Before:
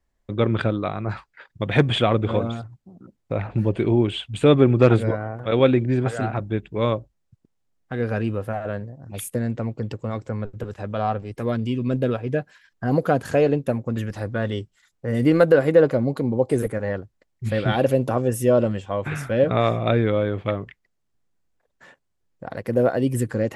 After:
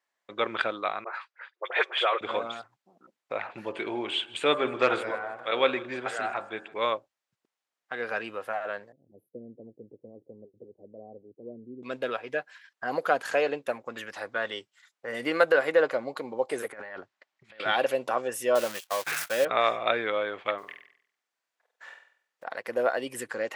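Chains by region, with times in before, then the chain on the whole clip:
1.04–2.21 rippled Chebyshev high-pass 350 Hz, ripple 3 dB + high shelf 5600 Hz -10 dB + dispersion highs, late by 46 ms, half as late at 1700 Hz
3.61–6.74 de-hum 45.58 Hz, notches 38 + feedback echo 0.157 s, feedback 53%, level -21 dB
8.92–11.83 inverse Chebyshev band-stop 1200–6000 Hz, stop band 60 dB + air absorption 380 m
16.72–17.6 notch 490 Hz, Q 5.6 + negative-ratio compressor -32 dBFS, ratio -0.5 + air absorption 87 m
18.55–19.45 switching spikes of -19.5 dBFS + gate -29 dBFS, range -37 dB
20.58–22.46 block floating point 7-bit + low shelf 190 Hz -8 dB + flutter echo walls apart 8.2 m, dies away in 0.57 s
whole clip: Bessel high-pass 1100 Hz, order 2; high shelf 5800 Hz -10 dB; gain +4 dB

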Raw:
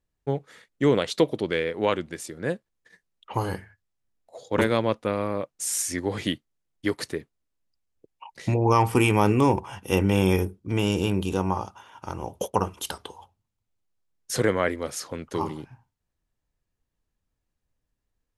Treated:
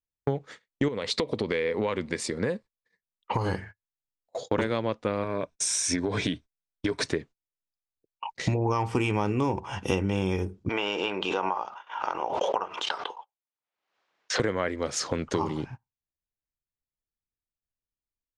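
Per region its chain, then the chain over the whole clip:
0.88–3.46 ripple EQ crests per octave 0.93, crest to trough 6 dB + compressor 5:1, threshold -25 dBFS
5.23–7.06 compressor, threshold -26 dBFS + ripple EQ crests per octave 1.6, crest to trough 8 dB
10.69–14.4 BPF 680–2900 Hz + backwards sustainer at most 62 dB/s
whole clip: gate -45 dBFS, range -27 dB; LPF 7400 Hz 24 dB/oct; compressor 6:1, threshold -33 dBFS; gain +9 dB

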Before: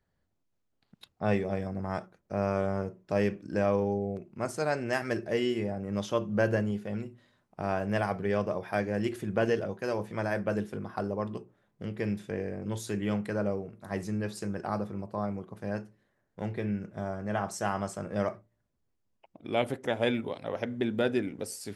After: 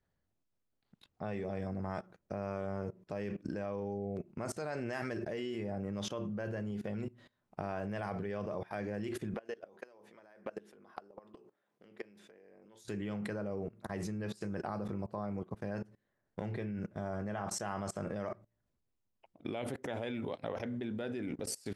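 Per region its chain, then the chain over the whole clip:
9.34–12.85 HPF 320 Hz + compressor 10:1, threshold -41 dBFS
whole clip: high shelf 9000 Hz -7 dB; level quantiser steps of 22 dB; gain +6 dB

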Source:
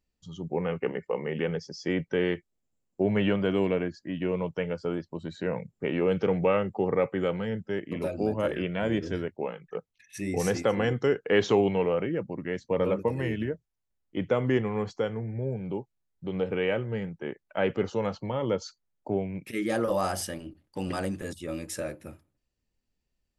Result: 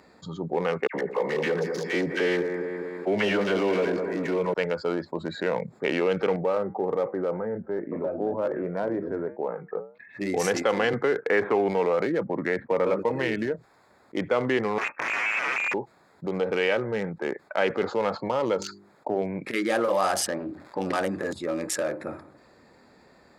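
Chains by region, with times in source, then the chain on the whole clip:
0.87–4.54 dispersion lows, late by 73 ms, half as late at 1700 Hz + echo 79 ms -19 dB + lo-fi delay 0.204 s, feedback 55%, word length 9-bit, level -10 dB
6.36–10.21 LPF 1100 Hz + flange 1.6 Hz, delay 6.4 ms, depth 1.9 ms, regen -76%
10.93–12.94 steep low-pass 2400 Hz 48 dB/oct + three-band squash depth 40%
14.78–15.74 wrapped overs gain 30.5 dB + inverted band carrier 2600 Hz
18.53–19.22 notches 50/100/150/200/250/300/350/400 Hz + dynamic EQ 3000 Hz, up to -4 dB, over -56 dBFS, Q 0.93
20.26–20.8 LPF 2800 Hz + crackle 460/s -61 dBFS
whole clip: Wiener smoothing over 15 samples; weighting filter A; fast leveller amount 50%; gain +3.5 dB

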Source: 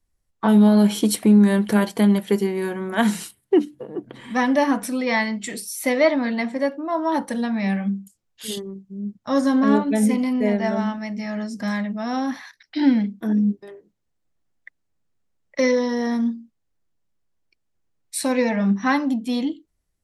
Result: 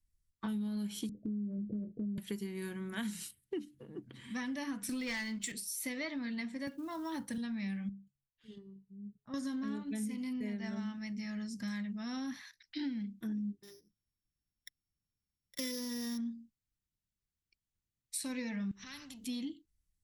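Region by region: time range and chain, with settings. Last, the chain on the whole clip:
1.09–2.18 steep low-pass 640 Hz 96 dB/oct + compressor, threshold -19 dBFS + doubler 24 ms -10 dB
4.89–5.52 HPF 220 Hz + sample leveller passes 2
6.67–7.38 bell 110 Hz +6 dB 1.2 oct + companded quantiser 8-bit + three-band squash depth 40%
7.89–9.34 LPF 1400 Hz + resonator 140 Hz, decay 0.52 s, harmonics odd
13.63–16.18 sample sorter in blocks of 8 samples + notch 620 Hz, Q 13
18.71–19.27 compressor 4:1, threshold -31 dBFS + spectral compressor 2:1
whole clip: passive tone stack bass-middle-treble 6-0-2; compressor 6:1, threshold -43 dBFS; gain +7.5 dB

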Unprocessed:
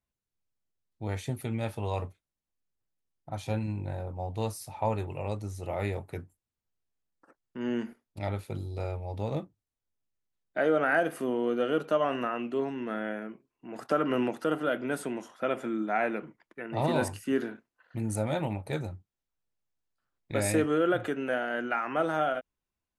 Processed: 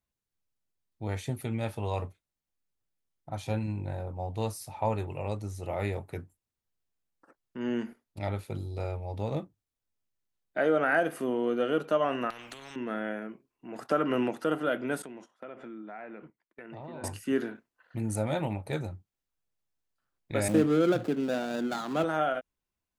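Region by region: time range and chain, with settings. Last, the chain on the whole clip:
12.3–12.76 compressor, threshold -35 dBFS + spectral compressor 4:1
15.02–17.04 gate -46 dBFS, range -17 dB + treble ducked by the level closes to 2500 Hz, closed at -26 dBFS + compressor 4:1, threshold -42 dBFS
20.48–22.04 median filter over 25 samples + HPF 160 Hz 24 dB/oct + tone controls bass +12 dB, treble +3 dB
whole clip: dry

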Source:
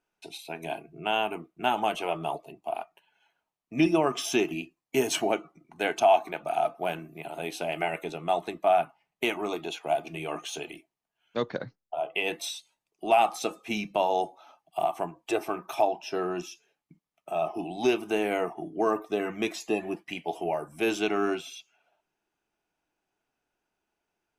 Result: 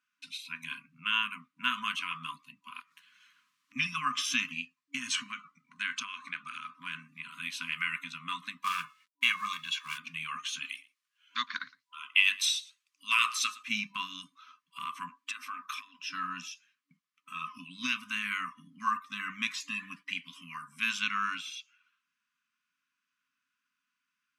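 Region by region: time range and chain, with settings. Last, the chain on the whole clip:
2.8–3.76 HPF 70 Hz 24 dB/oct + compressor, threshold -52 dBFS + spectral compressor 2:1
4.51–7.31 LPF 10000 Hz 24 dB/oct + compressor 3:1, threshold -27 dBFS
8.62–9.98 comb 1.8 ms, depth 79% + de-hum 431 Hz, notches 21 + companded quantiser 6-bit
10.65–13.63 HPF 400 Hz + high shelf 2400 Hz +8 dB + echo 0.113 s -21 dB
15.09–15.99 steep high-pass 230 Hz 48 dB/oct + compressor 5:1, threshold -31 dBFS
whole clip: weighting filter A; FFT band-reject 280–980 Hz; high shelf 7900 Hz -7 dB; gain +2 dB

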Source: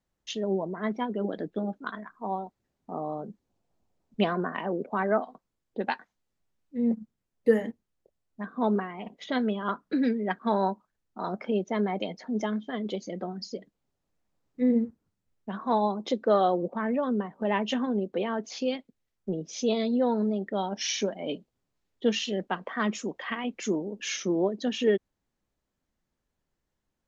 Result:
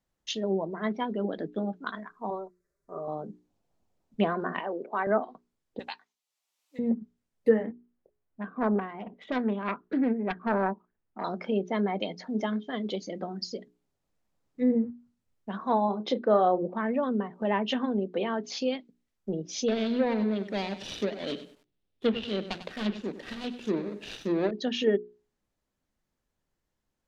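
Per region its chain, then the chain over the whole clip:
2.3–3.08 fixed phaser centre 820 Hz, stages 6 + comb 5.1 ms, depth 55%
4.59–5.07 HPF 390 Hz + high shelf 5200 Hz -9.5 dB
5.79–6.79 HPF 1200 Hz + bell 1600 Hz -10 dB 0.73 oct + three-band squash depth 70%
7.63–11.24 self-modulated delay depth 0.31 ms + LPF 2100 Hz
15.85–16.59 Bessel low-pass 5000 Hz + doubler 33 ms -11 dB
19.68–24.51 median filter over 41 samples + bell 3400 Hz +12 dB 1.2 oct + lo-fi delay 97 ms, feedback 35%, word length 9-bit, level -12 dB
whole clip: notches 60/120/180/240/300/360/420 Hz; treble ducked by the level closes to 1700 Hz, closed at -21 dBFS; dynamic EQ 4300 Hz, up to +5 dB, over -53 dBFS, Q 1.4

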